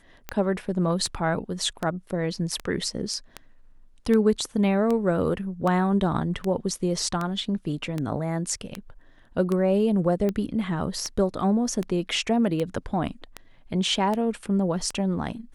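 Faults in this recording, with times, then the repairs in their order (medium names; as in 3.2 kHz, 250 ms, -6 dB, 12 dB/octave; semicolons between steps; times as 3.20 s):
tick 78 rpm -15 dBFS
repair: de-click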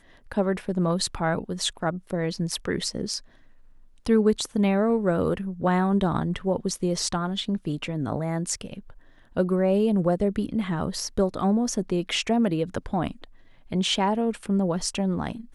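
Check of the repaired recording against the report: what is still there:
nothing left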